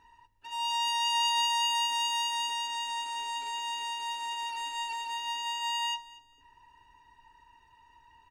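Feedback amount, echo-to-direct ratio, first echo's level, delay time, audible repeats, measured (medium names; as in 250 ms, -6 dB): 26%, -19.5 dB, -20.0 dB, 232 ms, 2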